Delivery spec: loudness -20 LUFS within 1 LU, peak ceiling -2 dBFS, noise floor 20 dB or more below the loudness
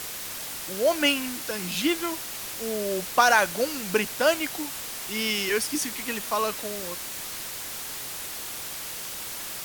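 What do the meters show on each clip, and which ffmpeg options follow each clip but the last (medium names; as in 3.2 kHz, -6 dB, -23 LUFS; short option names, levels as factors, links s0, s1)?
noise floor -36 dBFS; noise floor target -47 dBFS; loudness -27.0 LUFS; peak level -5.0 dBFS; loudness target -20.0 LUFS
-> -af "afftdn=nr=11:nf=-36"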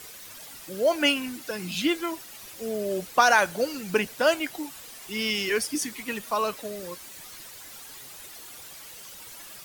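noise floor -44 dBFS; noise floor target -47 dBFS
-> -af "afftdn=nr=6:nf=-44"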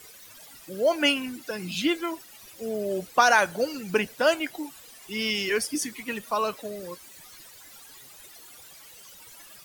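noise floor -49 dBFS; loudness -26.0 LUFS; peak level -6.0 dBFS; loudness target -20.0 LUFS
-> -af "volume=2,alimiter=limit=0.794:level=0:latency=1"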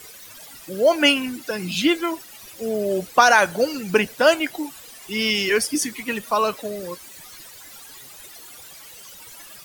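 loudness -20.5 LUFS; peak level -2.0 dBFS; noise floor -43 dBFS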